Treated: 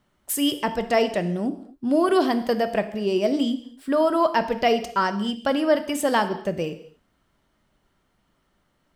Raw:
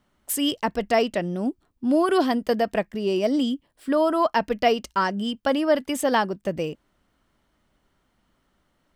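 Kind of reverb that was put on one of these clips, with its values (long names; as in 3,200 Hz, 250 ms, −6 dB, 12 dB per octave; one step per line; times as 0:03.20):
reverb whose tail is shaped and stops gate 280 ms falling, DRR 9.5 dB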